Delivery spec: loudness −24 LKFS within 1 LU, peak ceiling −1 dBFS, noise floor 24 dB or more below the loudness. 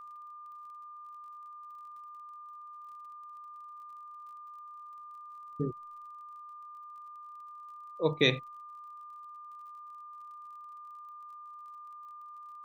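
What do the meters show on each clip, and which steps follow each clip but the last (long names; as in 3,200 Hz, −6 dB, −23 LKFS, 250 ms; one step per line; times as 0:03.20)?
crackle rate 36 per second; interfering tone 1,200 Hz; level of the tone −45 dBFS; integrated loudness −40.5 LKFS; sample peak −11.5 dBFS; target loudness −24.0 LKFS
→ click removal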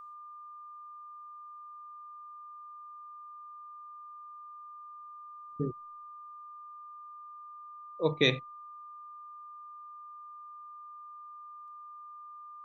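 crackle rate 0.079 per second; interfering tone 1,200 Hz; level of the tone −45 dBFS
→ notch filter 1,200 Hz, Q 30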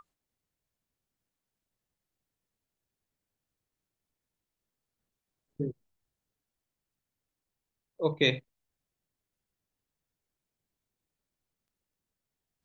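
interfering tone none found; integrated loudness −31.0 LKFS; sample peak −11.5 dBFS; target loudness −24.0 LKFS
→ level +7 dB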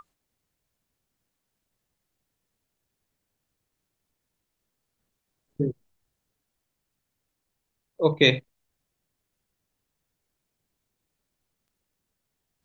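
integrated loudness −24.0 LKFS; sample peak −4.5 dBFS; background noise floor −82 dBFS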